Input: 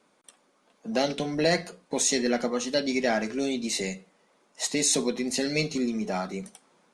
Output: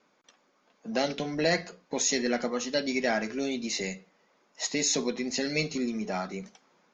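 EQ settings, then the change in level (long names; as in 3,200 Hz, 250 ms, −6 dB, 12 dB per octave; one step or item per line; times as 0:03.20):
Chebyshev low-pass with heavy ripple 6,900 Hz, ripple 3 dB
0.0 dB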